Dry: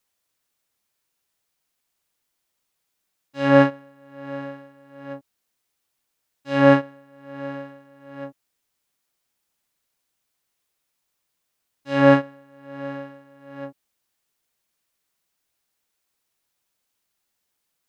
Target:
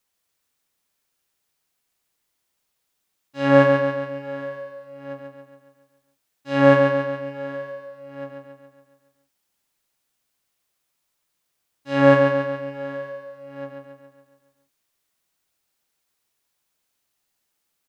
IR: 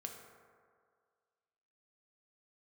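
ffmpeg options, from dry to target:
-af "aecho=1:1:139|278|417|556|695|834|973:0.562|0.309|0.17|0.0936|0.0515|0.0283|0.0156"

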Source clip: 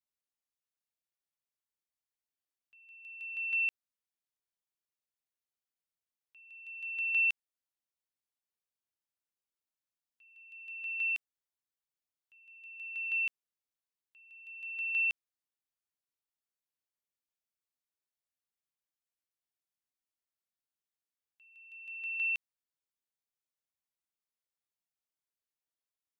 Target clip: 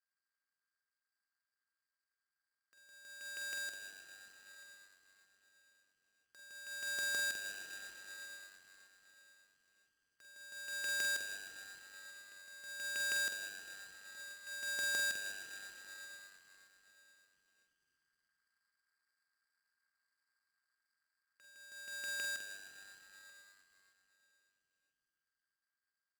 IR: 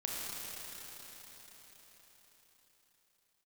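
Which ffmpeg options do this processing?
-filter_complex "[0:a]asuperpass=centerf=1500:order=4:qfactor=3.5,asplit=2[link_01][link_02];[1:a]atrim=start_sample=2205,asetrate=57330,aresample=44100[link_03];[link_02][link_03]afir=irnorm=-1:irlink=0,volume=-6.5dB[link_04];[link_01][link_04]amix=inputs=2:normalize=0,acompressor=threshold=-59dB:ratio=6,asplit=2[link_05][link_06];[link_06]adelay=45,volume=-8dB[link_07];[link_05][link_07]amix=inputs=2:normalize=0,dynaudnorm=framelen=690:gausssize=17:maxgain=8dB,asplit=6[link_08][link_09][link_10][link_11][link_12][link_13];[link_09]adelay=313,afreqshift=96,volume=-17dB[link_14];[link_10]adelay=626,afreqshift=192,volume=-22.5dB[link_15];[link_11]adelay=939,afreqshift=288,volume=-28dB[link_16];[link_12]adelay=1252,afreqshift=384,volume=-33.5dB[link_17];[link_13]adelay=1565,afreqshift=480,volume=-39.1dB[link_18];[link_08][link_14][link_15][link_16][link_17][link_18]amix=inputs=6:normalize=0,aeval=exprs='abs(val(0))':channel_layout=same,aeval=exprs='val(0)*sgn(sin(2*PI*1600*n/s))':channel_layout=same,volume=14dB"

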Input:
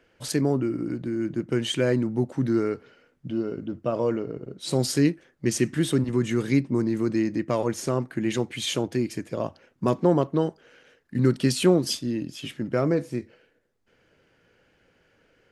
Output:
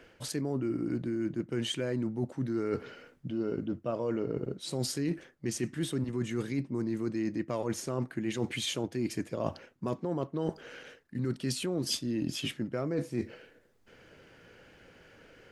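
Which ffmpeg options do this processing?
ffmpeg -i in.wav -af "alimiter=limit=-14dB:level=0:latency=1:release=180,areverse,acompressor=threshold=-36dB:ratio=10,areverse,volume=7dB" out.wav

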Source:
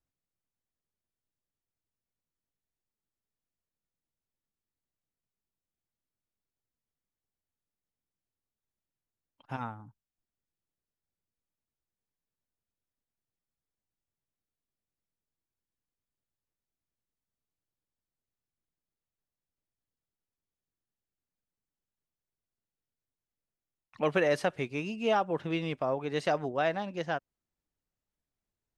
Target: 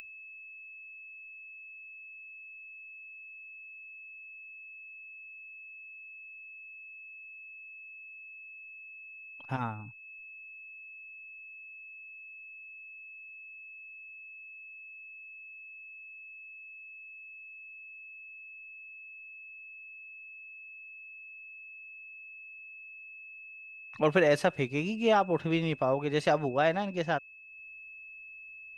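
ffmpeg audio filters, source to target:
ffmpeg -i in.wav -af "lowshelf=frequency=100:gain=7,aeval=exprs='val(0)+0.00251*sin(2*PI*2600*n/s)':channel_layout=same,acompressor=mode=upward:threshold=-46dB:ratio=2.5,volume=2.5dB" out.wav

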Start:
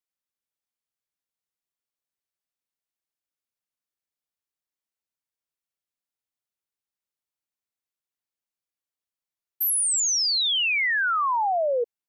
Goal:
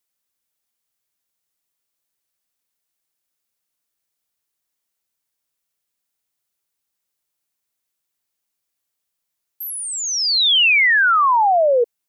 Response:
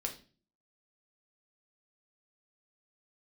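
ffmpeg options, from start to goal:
-filter_complex "[0:a]highshelf=frequency=5600:gain=6.5,acrossover=split=4000[link_01][link_02];[link_02]alimiter=level_in=10dB:limit=-24dB:level=0:latency=1,volume=-10dB[link_03];[link_01][link_03]amix=inputs=2:normalize=0,volume=8.5dB"

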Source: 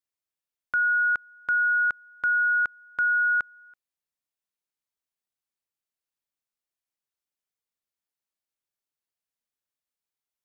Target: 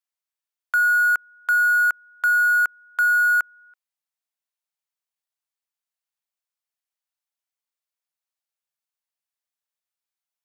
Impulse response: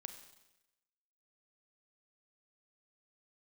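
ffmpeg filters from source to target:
-filter_complex "[0:a]highpass=frequency=590:width=0.5412,highpass=frequency=590:width=1.3066,asplit=2[link_01][link_02];[link_02]acrusher=bits=4:mix=0:aa=0.5,volume=-3dB[link_03];[link_01][link_03]amix=inputs=2:normalize=0"

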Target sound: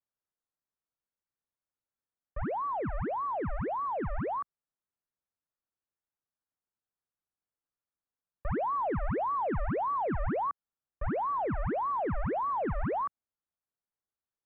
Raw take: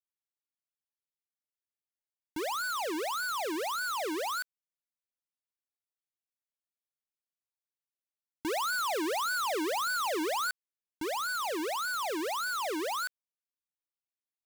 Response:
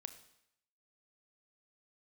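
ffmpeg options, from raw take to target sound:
-af "acrusher=bits=5:mode=log:mix=0:aa=0.000001,highpass=frequency=180:width_type=q:width=0.5412,highpass=frequency=180:width_type=q:width=1.307,lowpass=frequency=2000:width_type=q:width=0.5176,lowpass=frequency=2000:width_type=q:width=0.7071,lowpass=frequency=2000:width_type=q:width=1.932,afreqshift=-350,volume=2.5dB"

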